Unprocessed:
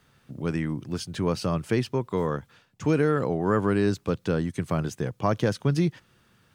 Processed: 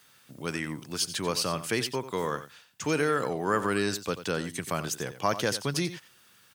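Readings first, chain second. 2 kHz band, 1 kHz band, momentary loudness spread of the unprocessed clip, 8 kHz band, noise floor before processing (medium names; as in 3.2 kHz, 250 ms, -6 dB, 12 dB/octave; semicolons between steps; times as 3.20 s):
+3.0 dB, +0.5 dB, 8 LU, +10.0 dB, -64 dBFS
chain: tilt EQ +3.5 dB/octave; on a send: delay 90 ms -13 dB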